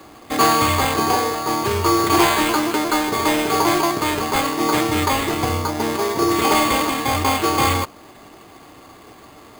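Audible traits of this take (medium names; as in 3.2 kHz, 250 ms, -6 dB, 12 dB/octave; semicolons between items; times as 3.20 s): aliases and images of a low sample rate 5.6 kHz, jitter 0%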